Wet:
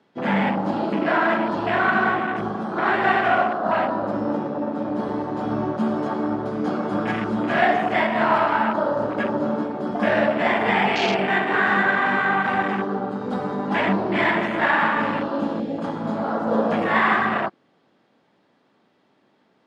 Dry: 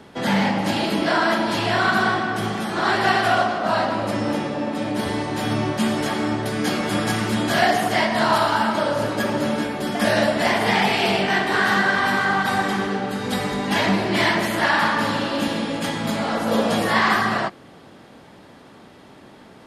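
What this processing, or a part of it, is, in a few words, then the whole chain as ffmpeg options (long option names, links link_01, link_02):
over-cleaned archive recording: -af "highpass=160,lowpass=5500,afwtdn=0.0562"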